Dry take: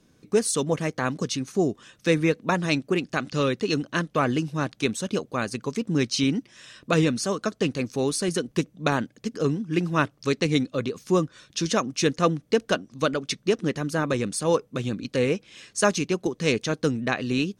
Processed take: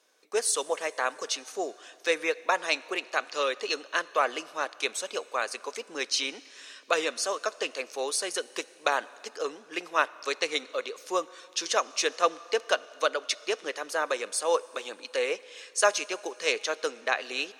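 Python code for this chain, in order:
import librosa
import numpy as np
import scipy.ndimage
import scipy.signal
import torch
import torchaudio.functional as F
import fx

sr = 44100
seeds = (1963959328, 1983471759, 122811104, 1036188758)

y = scipy.signal.sosfilt(scipy.signal.butter(4, 510.0, 'highpass', fs=sr, output='sos'), x)
y = fx.rev_plate(y, sr, seeds[0], rt60_s=2.9, hf_ratio=0.95, predelay_ms=0, drr_db=19.0)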